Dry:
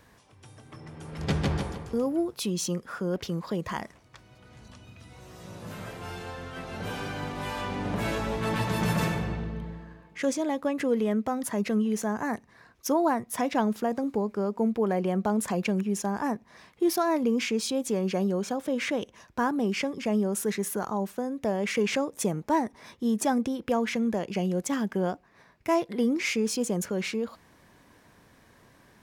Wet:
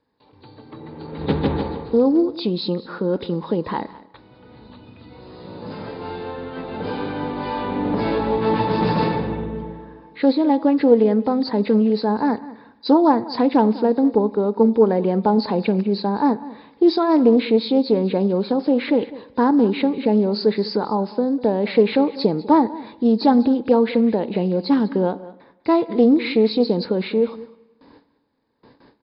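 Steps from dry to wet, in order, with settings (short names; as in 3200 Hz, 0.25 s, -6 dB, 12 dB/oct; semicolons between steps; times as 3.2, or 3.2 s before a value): nonlinear frequency compression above 3500 Hz 4:1; gate with hold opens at -46 dBFS; small resonant body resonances 290/450/850 Hz, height 13 dB, ringing for 25 ms; on a send: echo 0.2 s -18.5 dB; on the sum: spring tank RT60 1.1 s, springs 37/49 ms, chirp 60 ms, DRR 18.5 dB; Doppler distortion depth 0.11 ms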